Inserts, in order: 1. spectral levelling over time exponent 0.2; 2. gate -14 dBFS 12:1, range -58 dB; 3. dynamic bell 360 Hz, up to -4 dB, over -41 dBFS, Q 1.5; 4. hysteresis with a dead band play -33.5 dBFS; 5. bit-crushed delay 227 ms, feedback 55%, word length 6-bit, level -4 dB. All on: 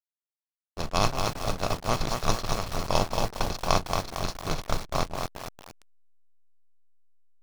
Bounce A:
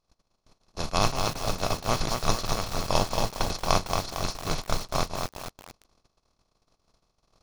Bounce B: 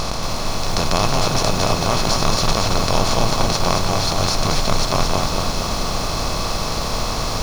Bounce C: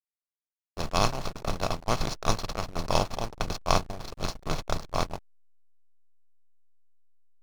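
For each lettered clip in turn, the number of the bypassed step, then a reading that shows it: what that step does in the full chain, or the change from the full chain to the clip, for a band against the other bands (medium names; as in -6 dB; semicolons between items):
4, distortion -15 dB; 2, momentary loudness spread change -4 LU; 5, crest factor change +1.5 dB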